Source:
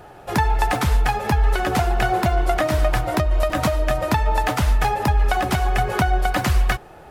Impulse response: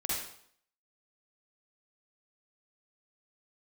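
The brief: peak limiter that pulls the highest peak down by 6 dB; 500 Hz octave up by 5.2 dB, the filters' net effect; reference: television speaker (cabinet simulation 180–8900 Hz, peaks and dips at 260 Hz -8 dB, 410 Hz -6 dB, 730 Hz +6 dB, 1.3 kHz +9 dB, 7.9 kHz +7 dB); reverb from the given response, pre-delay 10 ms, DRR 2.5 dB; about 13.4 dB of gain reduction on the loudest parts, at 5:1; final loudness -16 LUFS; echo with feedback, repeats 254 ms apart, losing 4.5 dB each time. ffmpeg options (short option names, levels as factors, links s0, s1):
-filter_complex "[0:a]equalizer=f=500:t=o:g=5,acompressor=threshold=0.0355:ratio=5,alimiter=limit=0.075:level=0:latency=1,aecho=1:1:254|508|762|1016|1270|1524|1778|2032|2286:0.596|0.357|0.214|0.129|0.0772|0.0463|0.0278|0.0167|0.01,asplit=2[s0][s1];[1:a]atrim=start_sample=2205,adelay=10[s2];[s1][s2]afir=irnorm=-1:irlink=0,volume=0.422[s3];[s0][s3]amix=inputs=2:normalize=0,highpass=f=180:w=0.5412,highpass=f=180:w=1.3066,equalizer=f=260:t=q:w=4:g=-8,equalizer=f=410:t=q:w=4:g=-6,equalizer=f=730:t=q:w=4:g=6,equalizer=f=1300:t=q:w=4:g=9,equalizer=f=7900:t=q:w=4:g=7,lowpass=f=8900:w=0.5412,lowpass=f=8900:w=1.3066,volume=3.76"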